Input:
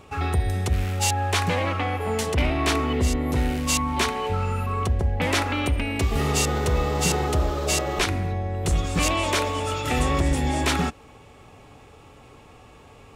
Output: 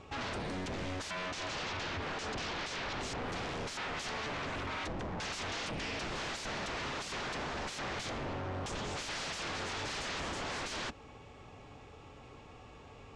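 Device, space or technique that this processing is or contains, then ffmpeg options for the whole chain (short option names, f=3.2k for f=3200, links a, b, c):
synthesiser wavefolder: -filter_complex "[0:a]aeval=exprs='0.0355*(abs(mod(val(0)/0.0355+3,4)-2)-1)':c=same,lowpass=f=6.9k:w=0.5412,lowpass=f=6.9k:w=1.3066,asettb=1/sr,asplit=3[a][b][c];[a]atrim=end=1.284[d];[b]atrim=start=1.28:end=3,asetpts=PTS-STARTPTS,afade=t=in:d=0.004:c=qsin,afade=t=out:st=1.716:d=0.004:c=qsin,lowpass=7.6k[e];[c]atrim=start=2.996[f];[d][e]acrossfade=d=0.004:c1=hsin:c2=qsin[g];[g][f]acrossfade=d=0.004:c1=qsin:c2=hsin,volume=-4.5dB"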